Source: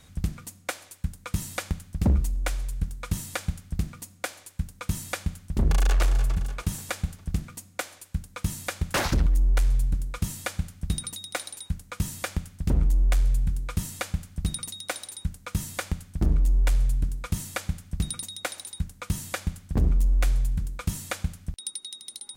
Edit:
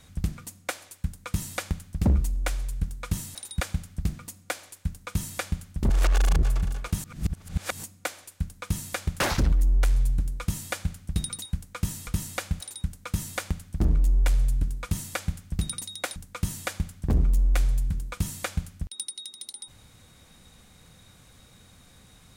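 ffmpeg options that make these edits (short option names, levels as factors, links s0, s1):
-filter_complex "[0:a]asplit=11[s0][s1][s2][s3][s4][s5][s6][s7][s8][s9][s10];[s0]atrim=end=3.352[s11];[s1]atrim=start=18.568:end=18.832[s12];[s2]atrim=start=3.348:end=5.642[s13];[s3]atrim=start=5.638:end=6.172,asetpts=PTS-STARTPTS,areverse[s14];[s4]atrim=start=6.168:end=6.782[s15];[s5]atrim=start=6.778:end=7.572,asetpts=PTS-STARTPTS,areverse[s16];[s6]atrim=start=7.568:end=11.192[s17];[s7]atrim=start=11.618:end=12.242[s18];[s8]atrim=start=13.698:end=14.242[s19];[s9]atrim=start=15.018:end=18.572[s20];[s10]atrim=start=18.828[s21];[s11][s12]acrossfade=d=0.004:c1=hsin:c2=hsin[s22];[s22][s13]acrossfade=d=0.004:c1=hsin:c2=hsin[s23];[s23][s14]acrossfade=d=0.004:c1=hsin:c2=hsin[s24];[s24][s15]acrossfade=d=0.004:c1=hsin:c2=hsin[s25];[s25][s16]acrossfade=d=0.004:c1=hsin:c2=hsin[s26];[s26][s17]acrossfade=d=0.004:c1=hsin:c2=hsin[s27];[s27][s18]acrossfade=d=0.004:c1=hsin:c2=hsin[s28];[s28][s19]acrossfade=d=0.004:c1=hsin:c2=hsin[s29];[s29][s20]acrossfade=d=0.004:c1=hsin:c2=hsin[s30];[s30][s21]acrossfade=d=0.004:c1=hsin:c2=hsin"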